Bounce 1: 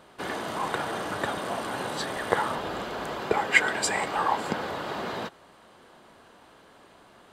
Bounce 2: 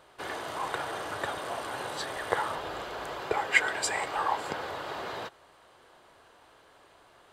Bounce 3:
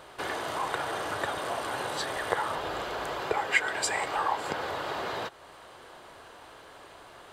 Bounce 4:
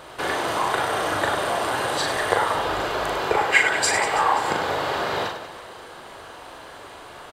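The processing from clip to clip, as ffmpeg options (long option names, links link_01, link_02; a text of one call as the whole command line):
ffmpeg -i in.wav -af "equalizer=frequency=210:width_type=o:width=0.85:gain=-12,volume=-3dB" out.wav
ffmpeg -i in.wav -af "acompressor=threshold=-48dB:ratio=1.5,volume=8.5dB" out.wav
ffmpeg -i in.wav -af "aecho=1:1:40|100|190|325|527.5:0.631|0.398|0.251|0.158|0.1,volume=6.5dB" out.wav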